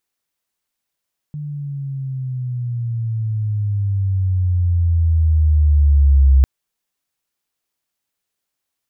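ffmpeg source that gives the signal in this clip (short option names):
-f lavfi -i "aevalsrc='pow(10,(-24.5+17.5*t/5.1)/20)*sin(2*PI*150*5.1/log(66/150)*(exp(log(66/150)*t/5.1)-1))':d=5.1:s=44100"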